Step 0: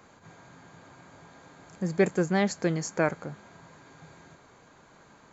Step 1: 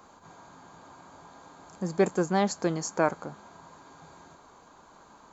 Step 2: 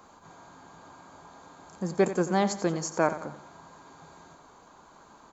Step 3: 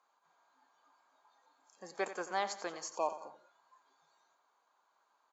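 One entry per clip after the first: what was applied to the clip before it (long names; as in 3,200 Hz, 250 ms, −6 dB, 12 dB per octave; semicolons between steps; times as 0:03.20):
graphic EQ with 10 bands 125 Hz −9 dB, 500 Hz −3 dB, 1,000 Hz +6 dB, 2,000 Hz −9 dB; level +2 dB
repeating echo 89 ms, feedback 41%, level −12.5 dB
noise reduction from a noise print of the clip's start 14 dB; band-pass filter 740–5,800 Hz; healed spectral selection 0:02.98–0:03.46, 1,200–2,400 Hz after; level −4.5 dB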